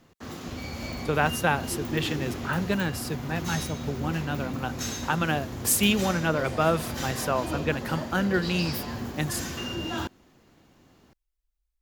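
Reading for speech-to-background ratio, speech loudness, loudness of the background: 6.0 dB, -28.0 LUFS, -34.0 LUFS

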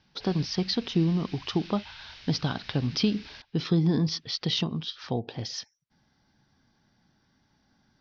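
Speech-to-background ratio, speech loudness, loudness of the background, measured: 17.5 dB, -29.0 LUFS, -46.5 LUFS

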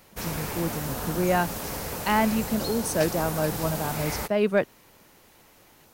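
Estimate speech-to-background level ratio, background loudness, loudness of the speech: 4.5 dB, -32.0 LUFS, -27.5 LUFS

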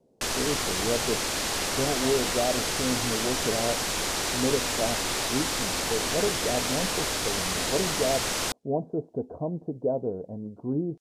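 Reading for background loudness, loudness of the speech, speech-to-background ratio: -27.0 LUFS, -31.5 LUFS, -4.5 dB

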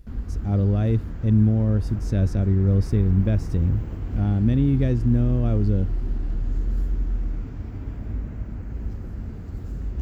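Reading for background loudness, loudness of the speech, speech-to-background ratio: -31.5 LUFS, -22.0 LUFS, 9.5 dB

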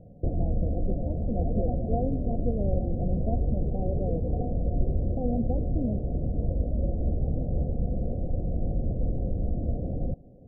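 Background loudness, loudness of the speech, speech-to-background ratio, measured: -30.5 LUFS, -35.0 LUFS, -4.5 dB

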